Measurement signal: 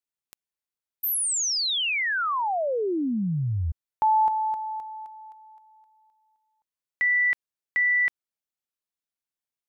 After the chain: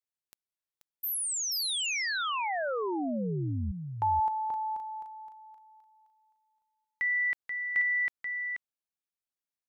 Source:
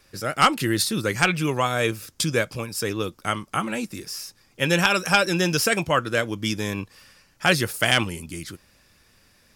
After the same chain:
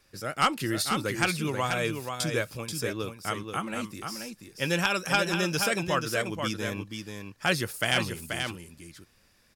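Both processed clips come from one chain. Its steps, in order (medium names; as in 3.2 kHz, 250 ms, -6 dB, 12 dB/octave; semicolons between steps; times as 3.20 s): delay 483 ms -6 dB; trim -6.5 dB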